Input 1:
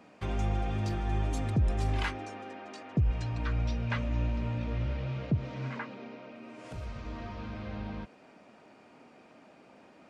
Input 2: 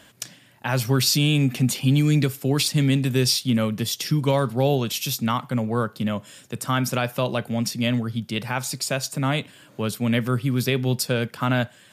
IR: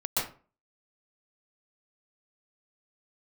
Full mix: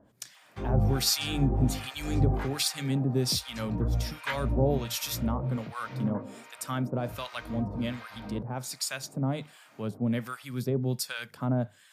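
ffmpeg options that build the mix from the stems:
-filter_complex "[0:a]highpass=61,acontrast=75,flanger=delay=18.5:depth=5.1:speed=2.2,adelay=350,volume=1dB[a];[1:a]bandreject=f=50:t=h:w=6,bandreject=f=100:t=h:w=6,bandreject=f=150:t=h:w=6,volume=-4dB[b];[a][b]amix=inputs=2:normalize=0,equalizer=f=2.8k:w=3.3:g=-4,acrossover=split=910[c][d];[c]aeval=exprs='val(0)*(1-1/2+1/2*cos(2*PI*1.3*n/s))':c=same[e];[d]aeval=exprs='val(0)*(1-1/2-1/2*cos(2*PI*1.3*n/s))':c=same[f];[e][f]amix=inputs=2:normalize=0"

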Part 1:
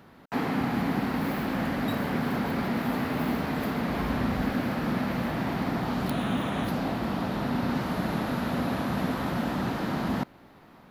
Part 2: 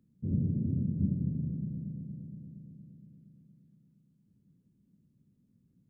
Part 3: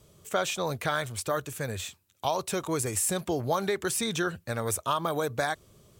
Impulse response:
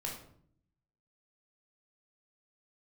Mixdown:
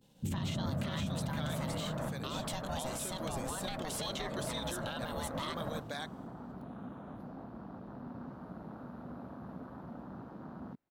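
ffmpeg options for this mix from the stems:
-filter_complex "[0:a]afwtdn=0.0355,volume=-1.5dB,asplit=2[a][b];[b]volume=-15.5dB[c];[1:a]volume=0.5dB[d];[2:a]agate=range=-33dB:threshold=-50dB:ratio=3:detection=peak,equalizer=f=3.5k:w=1.7:g=10,volume=1dB,asplit=3[e][f][g];[f]volume=-14dB[h];[g]apad=whole_len=480957[i];[a][i]sidechaingate=range=-33dB:threshold=-55dB:ratio=16:detection=peak[j];[j][e]amix=inputs=2:normalize=0,aeval=exprs='val(0)*sin(2*PI*390*n/s)':c=same,acompressor=threshold=-32dB:ratio=6,volume=0dB[k];[c][h]amix=inputs=2:normalize=0,aecho=0:1:518:1[l];[d][k][l]amix=inputs=3:normalize=0,alimiter=level_in=3dB:limit=-24dB:level=0:latency=1:release=106,volume=-3dB"

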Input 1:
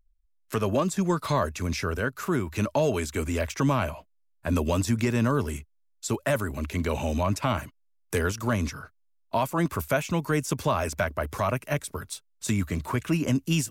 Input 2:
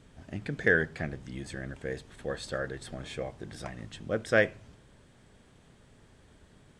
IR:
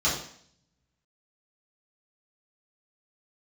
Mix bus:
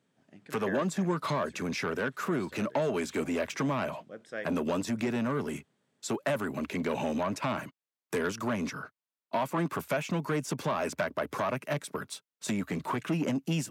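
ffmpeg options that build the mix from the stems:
-filter_complex "[0:a]highshelf=f=5k:g=-11,acompressor=threshold=-24dB:ratio=6,asoftclip=type=tanh:threshold=-24.5dB,volume=2.5dB[a];[1:a]volume=-14.5dB[b];[a][b]amix=inputs=2:normalize=0,highpass=f=150:w=0.5412,highpass=f=150:w=1.3066"

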